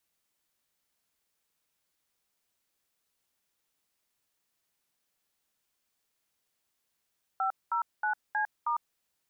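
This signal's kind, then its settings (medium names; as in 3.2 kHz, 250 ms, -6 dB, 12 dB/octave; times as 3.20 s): DTMF "509C*", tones 103 ms, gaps 213 ms, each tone -29 dBFS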